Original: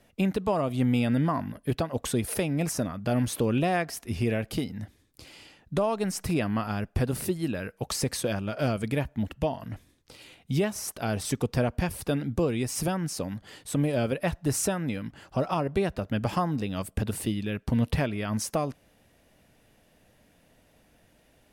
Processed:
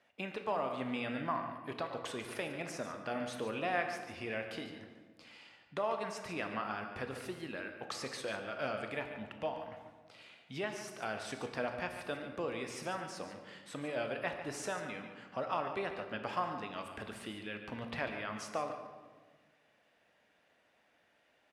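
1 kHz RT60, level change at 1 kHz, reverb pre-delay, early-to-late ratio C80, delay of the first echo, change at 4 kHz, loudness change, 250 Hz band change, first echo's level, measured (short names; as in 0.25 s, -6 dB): 1.4 s, -5.0 dB, 18 ms, 7.0 dB, 0.144 s, -8.0 dB, -10.5 dB, -15.5 dB, -11.0 dB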